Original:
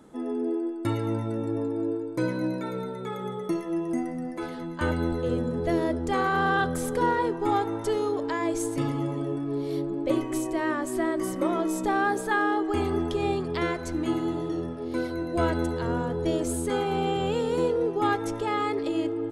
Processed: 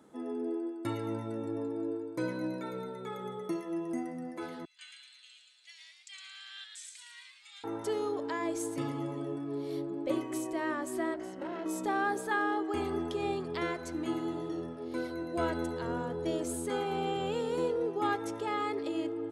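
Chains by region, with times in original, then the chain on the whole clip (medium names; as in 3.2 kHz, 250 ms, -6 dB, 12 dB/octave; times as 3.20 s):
4.65–7.64 s: elliptic band-pass 2.4–8.3 kHz, stop band 80 dB + frequency-shifting echo 112 ms, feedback 44%, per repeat +130 Hz, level -5 dB
11.14–11.66 s: low-pass 6 kHz + valve stage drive 27 dB, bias 0.75 + comb of notches 1.2 kHz
whole clip: high-pass 50 Hz; bass shelf 130 Hz -9 dB; trim -5.5 dB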